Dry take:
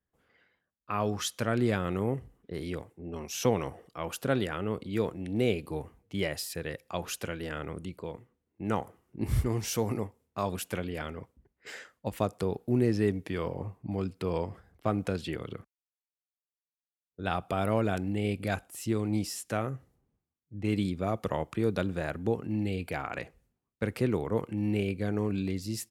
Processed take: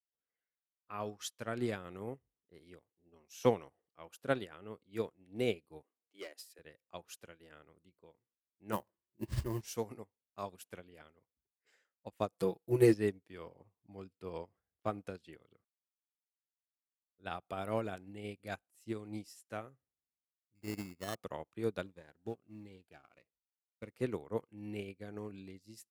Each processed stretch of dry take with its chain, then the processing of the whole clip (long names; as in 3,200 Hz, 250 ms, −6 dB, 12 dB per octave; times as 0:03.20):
0:05.83–0:06.59: Butterworth high-pass 240 Hz 48 dB per octave + notch filter 880 Hz + hard clipping −27.5 dBFS
0:08.72–0:09.61: EQ curve with evenly spaced ripples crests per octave 1.3, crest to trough 10 dB + sample-rate reduction 13,000 Hz, jitter 20%
0:12.32–0:12.94: high-shelf EQ 10,000 Hz +11 dB + comb filter 6 ms, depth 95%
0:20.55–0:21.15: gap after every zero crossing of 0.16 ms + low-pass filter 4,600 Hz + sample-rate reduction 2,400 Hz
0:21.86–0:23.94: mu-law and A-law mismatch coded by A + high-shelf EQ 11,000 Hz −8.5 dB + phaser whose notches keep moving one way falling 1.5 Hz
whole clip: bass and treble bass −5 dB, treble +2 dB; expander for the loud parts 2.5 to 1, over −43 dBFS; level +2 dB